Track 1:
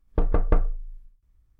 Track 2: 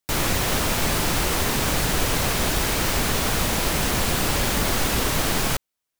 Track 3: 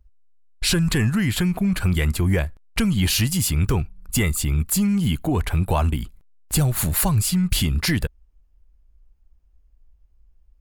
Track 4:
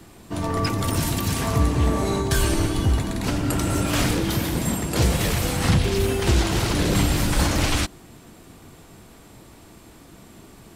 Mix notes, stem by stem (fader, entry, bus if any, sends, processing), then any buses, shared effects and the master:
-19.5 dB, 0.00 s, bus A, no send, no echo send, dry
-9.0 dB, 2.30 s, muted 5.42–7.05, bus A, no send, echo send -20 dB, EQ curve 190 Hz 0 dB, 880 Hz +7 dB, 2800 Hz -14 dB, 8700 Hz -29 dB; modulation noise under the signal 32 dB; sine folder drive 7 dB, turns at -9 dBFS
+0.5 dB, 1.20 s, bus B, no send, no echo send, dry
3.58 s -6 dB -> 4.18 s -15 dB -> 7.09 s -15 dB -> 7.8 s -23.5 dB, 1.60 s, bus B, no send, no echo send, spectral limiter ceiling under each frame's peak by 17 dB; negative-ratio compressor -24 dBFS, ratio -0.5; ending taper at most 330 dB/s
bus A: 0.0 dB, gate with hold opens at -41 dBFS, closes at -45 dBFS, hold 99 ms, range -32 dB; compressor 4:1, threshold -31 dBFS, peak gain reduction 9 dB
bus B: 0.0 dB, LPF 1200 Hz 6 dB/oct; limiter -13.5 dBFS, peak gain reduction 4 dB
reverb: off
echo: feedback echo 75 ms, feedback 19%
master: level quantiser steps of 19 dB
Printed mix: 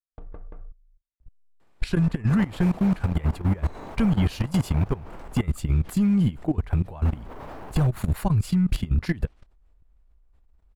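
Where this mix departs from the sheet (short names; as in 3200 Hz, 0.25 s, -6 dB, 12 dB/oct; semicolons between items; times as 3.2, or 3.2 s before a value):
stem 1 -19.5 dB -> -9.0 dB; stem 2 -9.0 dB -> -17.0 dB; stem 3 +0.5 dB -> +10.5 dB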